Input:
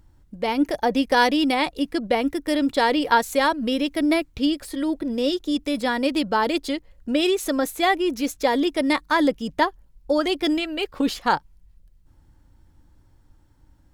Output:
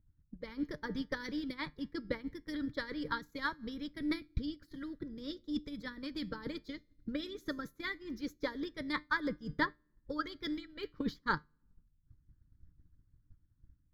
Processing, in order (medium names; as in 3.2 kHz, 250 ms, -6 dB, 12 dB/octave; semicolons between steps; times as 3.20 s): wow and flutter 20 cents; tone controls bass +12 dB, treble -7 dB; static phaser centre 2.7 kHz, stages 6; simulated room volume 2100 m³, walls furnished, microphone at 0.43 m; harmonic-percussive split harmonic -13 dB; compression 2.5:1, threshold -45 dBFS, peak gain reduction 16 dB; feedback comb 150 Hz, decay 0.81 s, harmonics all, mix 50%; expander -37 dBFS; level rider gain up to 3 dB; trim +17.5 dB